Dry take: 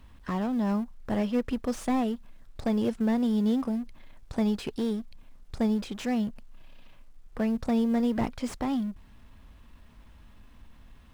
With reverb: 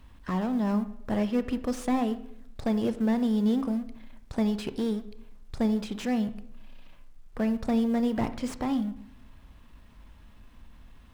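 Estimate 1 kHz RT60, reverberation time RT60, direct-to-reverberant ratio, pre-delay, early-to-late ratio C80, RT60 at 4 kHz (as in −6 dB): 0.60 s, 0.70 s, 11.5 dB, 24 ms, 16.5 dB, 0.55 s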